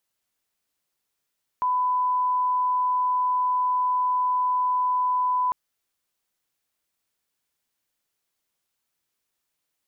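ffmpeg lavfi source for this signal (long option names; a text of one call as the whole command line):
ffmpeg -f lavfi -i "sine=frequency=1000:duration=3.9:sample_rate=44100,volume=-1.94dB" out.wav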